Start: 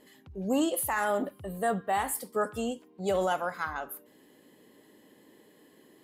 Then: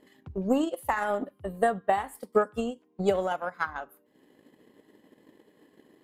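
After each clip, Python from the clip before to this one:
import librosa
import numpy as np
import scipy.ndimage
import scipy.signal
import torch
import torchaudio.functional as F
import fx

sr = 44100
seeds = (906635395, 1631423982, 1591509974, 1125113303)

y = fx.high_shelf(x, sr, hz=4400.0, db=-10.0)
y = fx.transient(y, sr, attack_db=11, sustain_db=-7)
y = y * librosa.db_to_amplitude(-1.5)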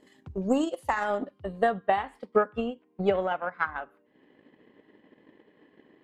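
y = fx.filter_sweep_lowpass(x, sr, from_hz=8300.0, to_hz=2500.0, start_s=0.32, end_s=2.51, q=1.4)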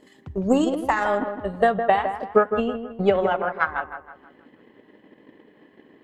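y = fx.echo_wet_lowpass(x, sr, ms=160, feedback_pct=39, hz=2000.0, wet_db=-8)
y = y * librosa.db_to_amplitude(5.5)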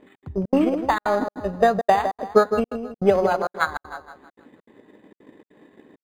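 y = fx.step_gate(x, sr, bpm=199, pattern='xx.xxx.xxxx', floor_db=-60.0, edge_ms=4.5)
y = np.interp(np.arange(len(y)), np.arange(len(y))[::8], y[::8])
y = y * librosa.db_to_amplitude(2.0)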